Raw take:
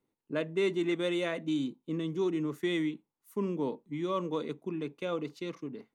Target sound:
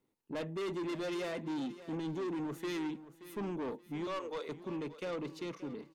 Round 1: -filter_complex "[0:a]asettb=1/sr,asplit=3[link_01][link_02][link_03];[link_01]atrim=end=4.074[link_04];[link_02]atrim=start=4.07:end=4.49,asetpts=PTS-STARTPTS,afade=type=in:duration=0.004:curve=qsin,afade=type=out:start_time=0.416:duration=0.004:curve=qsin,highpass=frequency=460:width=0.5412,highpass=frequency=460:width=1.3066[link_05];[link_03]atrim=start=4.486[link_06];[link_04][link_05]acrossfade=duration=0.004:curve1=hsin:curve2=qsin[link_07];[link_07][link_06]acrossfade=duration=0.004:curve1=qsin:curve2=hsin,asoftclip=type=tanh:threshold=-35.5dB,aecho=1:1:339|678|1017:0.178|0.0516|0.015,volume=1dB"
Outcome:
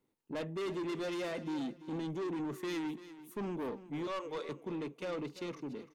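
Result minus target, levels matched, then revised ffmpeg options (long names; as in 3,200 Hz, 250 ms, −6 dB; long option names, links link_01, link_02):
echo 238 ms early
-filter_complex "[0:a]asettb=1/sr,asplit=3[link_01][link_02][link_03];[link_01]atrim=end=4.074[link_04];[link_02]atrim=start=4.07:end=4.49,asetpts=PTS-STARTPTS,afade=type=in:duration=0.004:curve=qsin,afade=type=out:start_time=0.416:duration=0.004:curve=qsin,highpass=frequency=460:width=0.5412,highpass=frequency=460:width=1.3066[link_05];[link_03]atrim=start=4.486[link_06];[link_04][link_05]acrossfade=duration=0.004:curve1=hsin:curve2=qsin[link_07];[link_07][link_06]acrossfade=duration=0.004:curve1=qsin:curve2=hsin,asoftclip=type=tanh:threshold=-35.5dB,aecho=1:1:577|1154|1731:0.178|0.0516|0.015,volume=1dB"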